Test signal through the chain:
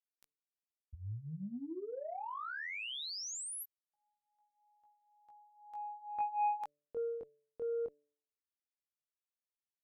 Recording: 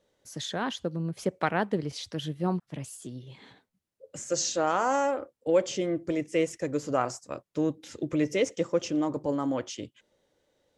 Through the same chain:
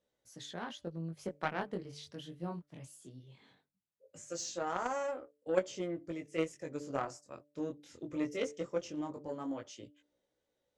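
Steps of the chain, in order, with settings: chorus 0.19 Hz, delay 16 ms, depth 7.5 ms; Chebyshev shaper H 3 -14 dB, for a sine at -13 dBFS; de-hum 146.7 Hz, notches 4; trim -1 dB

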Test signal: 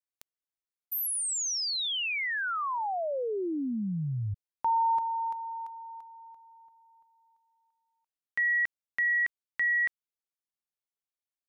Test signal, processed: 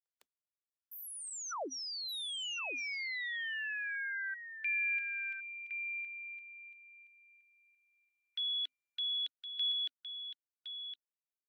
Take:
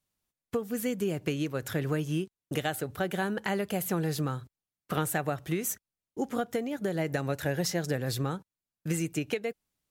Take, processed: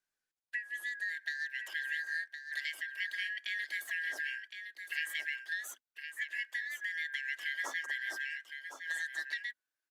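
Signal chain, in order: four frequency bands reordered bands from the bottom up 4123; treble shelf 9.7 kHz -10.5 dB; delay 1063 ms -8.5 dB; dynamic bell 650 Hz, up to +4 dB, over -60 dBFS, Q 5.4; Chebyshev high-pass 260 Hz, order 10; trim -7.5 dB; Opus 32 kbps 48 kHz

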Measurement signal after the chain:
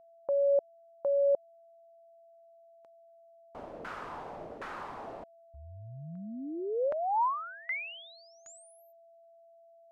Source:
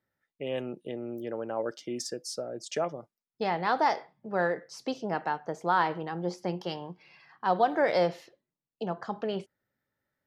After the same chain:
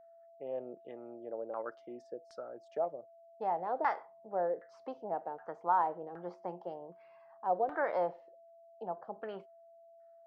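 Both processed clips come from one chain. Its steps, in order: RIAA curve recording; LFO low-pass saw down 1.3 Hz 500–1500 Hz; whistle 670 Hz -48 dBFS; trim -8 dB

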